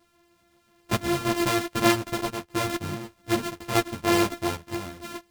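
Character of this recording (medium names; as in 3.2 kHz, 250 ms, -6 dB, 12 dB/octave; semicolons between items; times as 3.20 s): a buzz of ramps at a fixed pitch in blocks of 128 samples; chopped level 0.8 Hz, depth 60%, duty 80%; a shimmering, thickened sound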